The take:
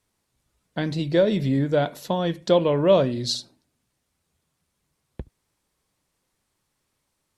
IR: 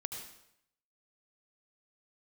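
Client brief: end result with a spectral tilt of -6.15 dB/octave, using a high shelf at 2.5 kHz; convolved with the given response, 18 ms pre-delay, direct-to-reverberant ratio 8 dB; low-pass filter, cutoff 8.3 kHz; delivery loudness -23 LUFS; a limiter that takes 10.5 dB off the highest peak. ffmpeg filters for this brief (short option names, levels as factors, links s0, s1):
-filter_complex "[0:a]lowpass=8300,highshelf=f=2500:g=-5.5,alimiter=limit=0.141:level=0:latency=1,asplit=2[s0][s1];[1:a]atrim=start_sample=2205,adelay=18[s2];[s1][s2]afir=irnorm=-1:irlink=0,volume=0.422[s3];[s0][s3]amix=inputs=2:normalize=0,volume=1.5"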